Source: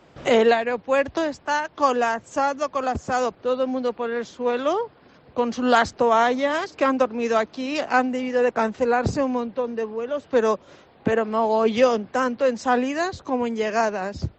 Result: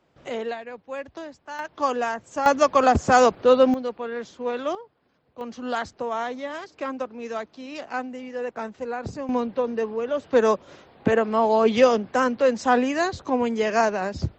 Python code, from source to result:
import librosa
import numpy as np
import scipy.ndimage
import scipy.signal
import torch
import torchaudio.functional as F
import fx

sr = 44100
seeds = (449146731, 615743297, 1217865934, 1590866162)

y = fx.gain(x, sr, db=fx.steps((0.0, -13.0), (1.59, -4.0), (2.46, 7.0), (3.74, -4.5), (4.75, -16.0), (5.41, -10.0), (9.29, 1.0)))